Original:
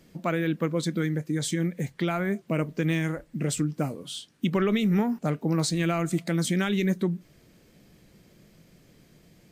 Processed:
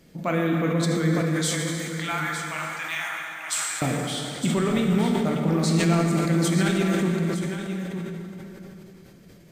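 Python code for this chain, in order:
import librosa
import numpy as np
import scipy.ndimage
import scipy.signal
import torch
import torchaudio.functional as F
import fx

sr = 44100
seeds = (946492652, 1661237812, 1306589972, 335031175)

y = fx.steep_highpass(x, sr, hz=780.0, slope=48, at=(1.29, 3.82))
y = fx.rider(y, sr, range_db=3, speed_s=0.5)
y = y + 10.0 ** (-9.5 / 20.0) * np.pad(y, (int(909 * sr / 1000.0), 0))[:len(y)]
y = fx.rev_plate(y, sr, seeds[0], rt60_s=3.6, hf_ratio=0.65, predelay_ms=0, drr_db=-0.5)
y = fx.sustainer(y, sr, db_per_s=26.0)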